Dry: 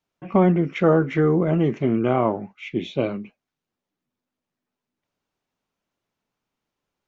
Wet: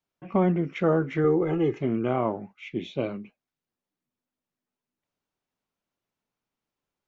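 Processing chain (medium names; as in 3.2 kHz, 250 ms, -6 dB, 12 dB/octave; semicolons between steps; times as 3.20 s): 1.24–1.81 s: comb 2.4 ms, depth 83%; trim -5.5 dB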